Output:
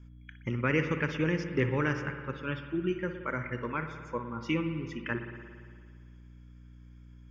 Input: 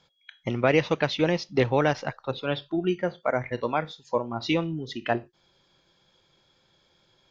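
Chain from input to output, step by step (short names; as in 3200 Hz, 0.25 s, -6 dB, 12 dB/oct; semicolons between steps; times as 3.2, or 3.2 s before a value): hum 60 Hz, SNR 19 dB; fixed phaser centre 1700 Hz, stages 4; spring tank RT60 1.9 s, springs 57 ms, chirp 70 ms, DRR 7 dB; gain -2.5 dB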